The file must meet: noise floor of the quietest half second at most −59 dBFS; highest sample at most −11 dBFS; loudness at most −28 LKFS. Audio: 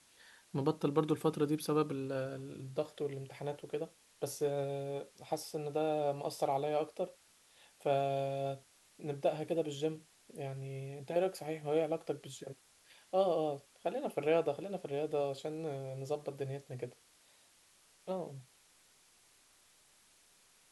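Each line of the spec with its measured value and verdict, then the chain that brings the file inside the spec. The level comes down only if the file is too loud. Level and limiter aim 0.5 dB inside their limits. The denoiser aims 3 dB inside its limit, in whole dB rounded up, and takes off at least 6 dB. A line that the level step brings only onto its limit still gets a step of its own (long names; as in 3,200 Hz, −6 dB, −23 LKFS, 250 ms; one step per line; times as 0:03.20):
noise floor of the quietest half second −67 dBFS: in spec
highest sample −17.0 dBFS: in spec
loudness −37.0 LKFS: in spec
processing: no processing needed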